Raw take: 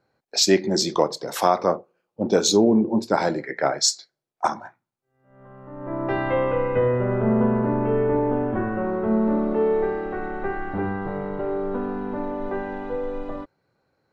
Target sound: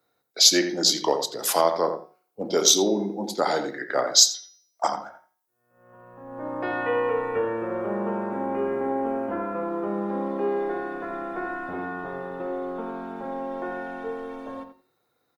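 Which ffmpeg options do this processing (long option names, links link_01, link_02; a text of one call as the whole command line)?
ffmpeg -i in.wav -filter_complex "[0:a]asplit=2[link_01][link_02];[link_02]adelay=78,lowpass=frequency=2000:poles=1,volume=-7.5dB,asplit=2[link_03][link_04];[link_04]adelay=78,lowpass=frequency=2000:poles=1,volume=0.17,asplit=2[link_05][link_06];[link_06]adelay=78,lowpass=frequency=2000:poles=1,volume=0.17[link_07];[link_01][link_03][link_05][link_07]amix=inputs=4:normalize=0,asetrate=40517,aresample=44100,aemphasis=mode=production:type=bsi,bandreject=frequency=182.9:width_type=h:width=4,bandreject=frequency=365.8:width_type=h:width=4,bandreject=frequency=548.7:width_type=h:width=4,bandreject=frequency=731.6:width_type=h:width=4,bandreject=frequency=914.5:width_type=h:width=4,bandreject=frequency=1097.4:width_type=h:width=4,bandreject=frequency=1280.3:width_type=h:width=4,bandreject=frequency=1463.2:width_type=h:width=4,bandreject=frequency=1646.1:width_type=h:width=4,bandreject=frequency=1829:width_type=h:width=4,bandreject=frequency=2011.9:width_type=h:width=4,bandreject=frequency=2194.8:width_type=h:width=4,bandreject=frequency=2377.7:width_type=h:width=4,bandreject=frequency=2560.6:width_type=h:width=4,bandreject=frequency=2743.5:width_type=h:width=4,bandreject=frequency=2926.4:width_type=h:width=4,bandreject=frequency=3109.3:width_type=h:width=4,bandreject=frequency=3292.2:width_type=h:width=4,bandreject=frequency=3475.1:width_type=h:width=4,bandreject=frequency=3658:width_type=h:width=4,bandreject=frequency=3840.9:width_type=h:width=4,bandreject=frequency=4023.8:width_type=h:width=4,bandreject=frequency=4206.7:width_type=h:width=4,bandreject=frequency=4389.6:width_type=h:width=4,bandreject=frequency=4572.5:width_type=h:width=4,bandreject=frequency=4755.4:width_type=h:width=4,bandreject=frequency=4938.3:width_type=h:width=4,bandreject=frequency=5121.2:width_type=h:width=4,bandreject=frequency=5304.1:width_type=h:width=4,bandreject=frequency=5487:width_type=h:width=4,bandreject=frequency=5669.9:width_type=h:width=4,bandreject=frequency=5852.8:width_type=h:width=4,bandreject=frequency=6035.7:width_type=h:width=4,bandreject=frequency=6218.6:width_type=h:width=4,bandreject=frequency=6401.5:width_type=h:width=4,acrossover=split=220|4700[link_08][link_09][link_10];[link_08]acompressor=threshold=-43dB:ratio=6[link_11];[link_11][link_09][link_10]amix=inputs=3:normalize=0,volume=-1.5dB" out.wav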